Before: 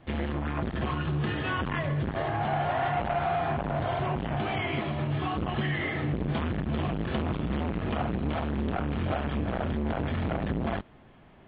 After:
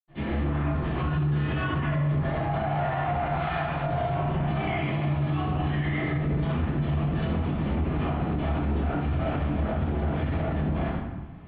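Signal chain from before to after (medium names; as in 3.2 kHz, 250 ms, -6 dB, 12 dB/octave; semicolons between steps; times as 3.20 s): 3.30–3.75 s: tilt shelf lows -7.5 dB, about 1.1 kHz; reverberation RT60 1.0 s, pre-delay 76 ms; peak limiter -21 dBFS, peak gain reduction 8.5 dB; trim +2 dB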